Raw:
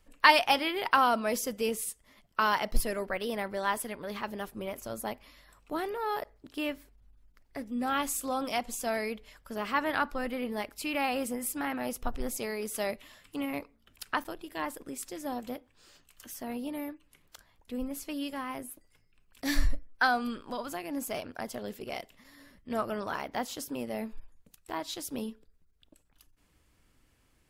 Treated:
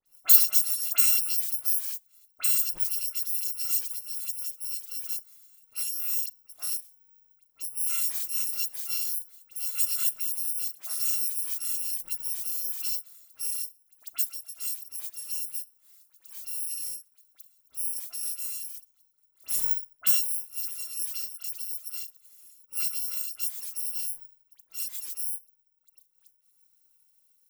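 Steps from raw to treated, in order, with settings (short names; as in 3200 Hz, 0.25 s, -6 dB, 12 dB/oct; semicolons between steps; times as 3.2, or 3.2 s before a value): FFT order left unsorted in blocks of 256 samples; RIAA curve recording; dispersion highs, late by 58 ms, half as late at 2400 Hz; gain -12.5 dB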